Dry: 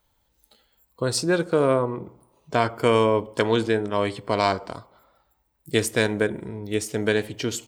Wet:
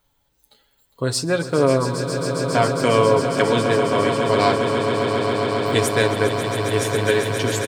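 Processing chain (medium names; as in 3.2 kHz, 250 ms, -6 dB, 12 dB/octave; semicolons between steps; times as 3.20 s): comb 7.2 ms, depth 53%; echo with a slow build-up 136 ms, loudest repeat 8, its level -10.5 dB; trim +1 dB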